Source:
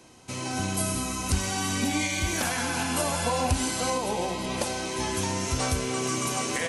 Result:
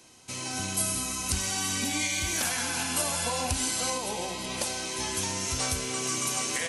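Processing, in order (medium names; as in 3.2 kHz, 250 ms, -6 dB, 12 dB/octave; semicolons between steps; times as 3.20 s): treble shelf 2 kHz +9.5 dB; trim -6.5 dB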